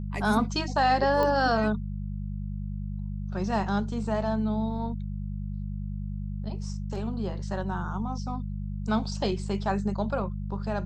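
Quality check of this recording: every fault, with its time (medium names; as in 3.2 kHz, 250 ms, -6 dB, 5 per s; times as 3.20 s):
hum 50 Hz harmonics 4 -33 dBFS
1.23 s: pop -16 dBFS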